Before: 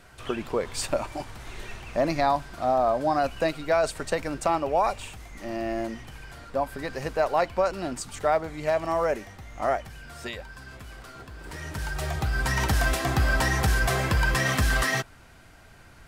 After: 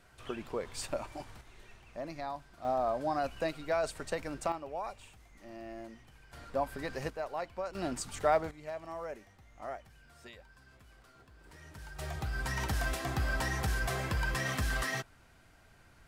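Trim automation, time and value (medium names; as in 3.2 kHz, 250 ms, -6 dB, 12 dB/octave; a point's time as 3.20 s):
-9.5 dB
from 1.41 s -16.5 dB
from 2.65 s -8.5 dB
from 4.52 s -15.5 dB
from 6.33 s -5.5 dB
from 7.10 s -14 dB
from 7.75 s -4 dB
from 8.51 s -16 dB
from 11.99 s -9.5 dB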